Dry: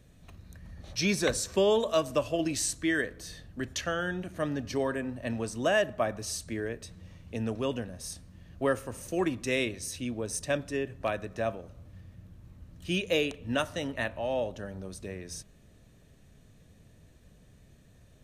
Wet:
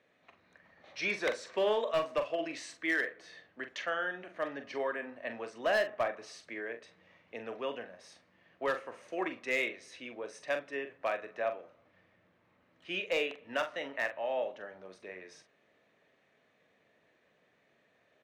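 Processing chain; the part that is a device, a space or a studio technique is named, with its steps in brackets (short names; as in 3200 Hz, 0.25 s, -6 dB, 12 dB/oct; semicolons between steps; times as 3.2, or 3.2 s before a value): megaphone (BPF 530–2600 Hz; bell 2100 Hz +6 dB 0.29 oct; hard clip -23 dBFS, distortion -18 dB; doubler 43 ms -9 dB); gain -1 dB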